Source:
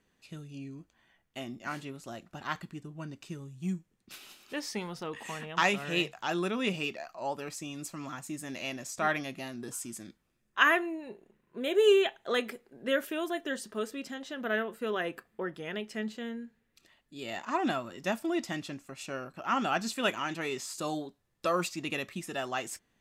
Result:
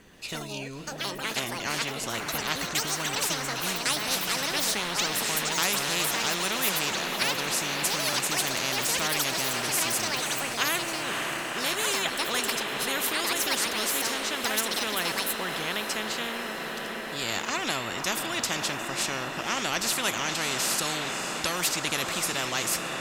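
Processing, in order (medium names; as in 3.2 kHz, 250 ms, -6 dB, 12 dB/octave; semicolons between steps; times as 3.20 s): ever faster or slower copies 133 ms, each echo +7 st, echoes 2, each echo -6 dB; echo that smears into a reverb 554 ms, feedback 70%, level -14.5 dB; spectrum-flattening compressor 4:1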